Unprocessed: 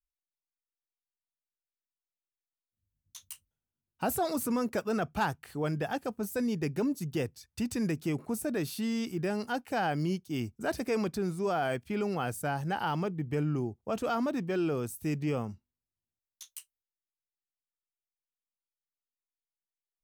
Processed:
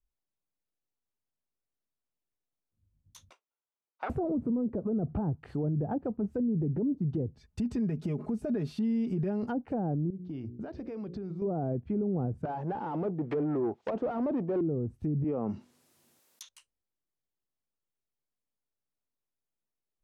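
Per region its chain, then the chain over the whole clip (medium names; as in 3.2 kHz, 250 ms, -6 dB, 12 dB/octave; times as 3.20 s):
3.30–4.10 s: comb filter that takes the minimum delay 0.85 ms + high-pass 530 Hz 24 dB/octave + distance through air 190 m
4.75–5.31 s: upward compressor, threshold -31 dBFS + tape spacing loss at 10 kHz 22 dB
7.37–9.43 s: comb 4.8 ms, depth 66% + compression 8:1, threshold -36 dBFS
10.10–11.42 s: low-pass 4.9 kHz 24 dB/octave + hum notches 60/120/180/240/300/360/420/480/540 Hz + compression 8:1, threshold -45 dBFS
12.45–14.61 s: overdrive pedal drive 26 dB, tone 7.8 kHz, clips at -20.5 dBFS + frequency weighting ITU-R 468
15.24–16.49 s: high-pass 210 Hz + tilt EQ +2.5 dB/octave + level flattener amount 50%
whole clip: low-pass that closes with the level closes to 460 Hz, closed at -28 dBFS; tilt shelf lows +9 dB, about 940 Hz; peak limiter -26.5 dBFS; trim +2.5 dB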